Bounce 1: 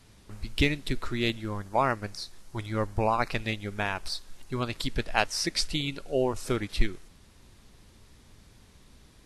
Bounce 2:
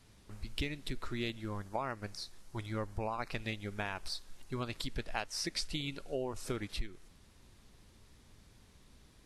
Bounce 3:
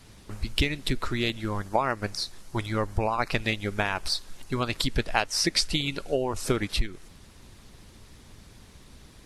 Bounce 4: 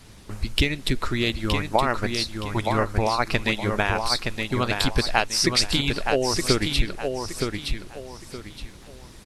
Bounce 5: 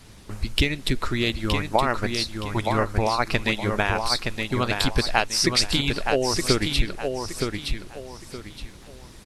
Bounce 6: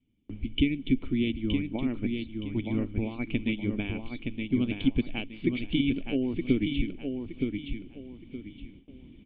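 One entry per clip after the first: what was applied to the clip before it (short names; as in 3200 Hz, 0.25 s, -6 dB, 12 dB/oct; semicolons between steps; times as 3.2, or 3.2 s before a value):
compressor 6:1, threshold -27 dBFS, peak gain reduction 12.5 dB; gain -5.5 dB
harmonic-percussive split percussive +5 dB; gain +8 dB
feedback echo 0.919 s, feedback 29%, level -5 dB; gain +3.5 dB
nothing audible
vocal tract filter i; gate with hold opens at -47 dBFS; gain +5.5 dB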